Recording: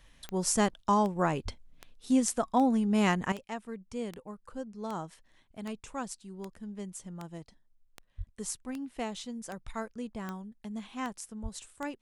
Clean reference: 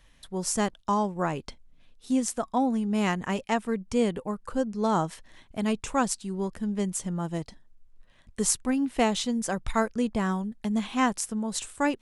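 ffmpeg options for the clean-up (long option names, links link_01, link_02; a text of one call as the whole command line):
ffmpeg -i in.wav -filter_complex "[0:a]adeclick=threshold=4,asplit=3[link_01][link_02][link_03];[link_01]afade=type=out:start_time=1.44:duration=0.02[link_04];[link_02]highpass=frequency=140:width=0.5412,highpass=frequency=140:width=1.3066,afade=type=in:start_time=1.44:duration=0.02,afade=type=out:start_time=1.56:duration=0.02[link_05];[link_03]afade=type=in:start_time=1.56:duration=0.02[link_06];[link_04][link_05][link_06]amix=inputs=3:normalize=0,asplit=3[link_07][link_08][link_09];[link_07]afade=type=out:start_time=8.17:duration=0.02[link_10];[link_08]highpass=frequency=140:width=0.5412,highpass=frequency=140:width=1.3066,afade=type=in:start_time=8.17:duration=0.02,afade=type=out:start_time=8.29:duration=0.02[link_11];[link_09]afade=type=in:start_time=8.29:duration=0.02[link_12];[link_10][link_11][link_12]amix=inputs=3:normalize=0,asplit=3[link_13][link_14][link_15];[link_13]afade=type=out:start_time=11.42:duration=0.02[link_16];[link_14]highpass=frequency=140:width=0.5412,highpass=frequency=140:width=1.3066,afade=type=in:start_time=11.42:duration=0.02,afade=type=out:start_time=11.54:duration=0.02[link_17];[link_15]afade=type=in:start_time=11.54:duration=0.02[link_18];[link_16][link_17][link_18]amix=inputs=3:normalize=0,asetnsamples=nb_out_samples=441:pad=0,asendcmd='3.32 volume volume 12dB',volume=0dB" out.wav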